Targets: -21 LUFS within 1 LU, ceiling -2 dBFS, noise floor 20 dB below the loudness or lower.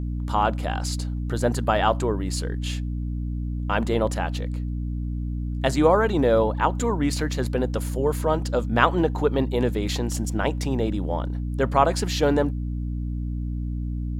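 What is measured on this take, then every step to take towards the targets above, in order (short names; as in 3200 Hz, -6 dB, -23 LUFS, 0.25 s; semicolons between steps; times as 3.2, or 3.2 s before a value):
hum 60 Hz; harmonics up to 300 Hz; hum level -25 dBFS; loudness -24.5 LUFS; peak -2.5 dBFS; loudness target -21.0 LUFS
-> de-hum 60 Hz, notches 5; gain +3.5 dB; limiter -2 dBFS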